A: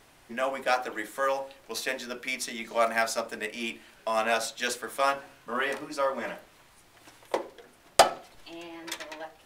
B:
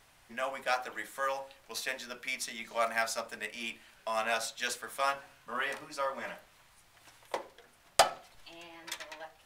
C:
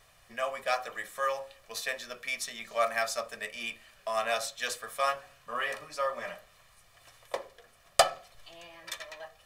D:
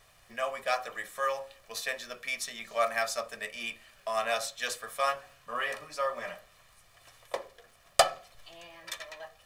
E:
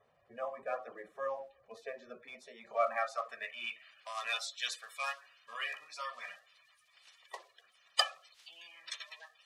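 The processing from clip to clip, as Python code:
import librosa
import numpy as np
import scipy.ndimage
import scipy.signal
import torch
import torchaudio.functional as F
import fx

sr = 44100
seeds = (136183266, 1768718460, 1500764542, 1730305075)

y1 = fx.peak_eq(x, sr, hz=330.0, db=-9.0, octaves=1.4)
y1 = F.gain(torch.from_numpy(y1), -3.5).numpy()
y2 = y1 + 0.55 * np.pad(y1, (int(1.7 * sr / 1000.0), 0))[:len(y1)]
y3 = fx.dmg_crackle(y2, sr, seeds[0], per_s=92.0, level_db=-52.0)
y4 = fx.spec_quant(y3, sr, step_db=30)
y4 = fx.filter_sweep_bandpass(y4, sr, from_hz=360.0, to_hz=3400.0, start_s=2.23, end_s=4.23, q=1.0)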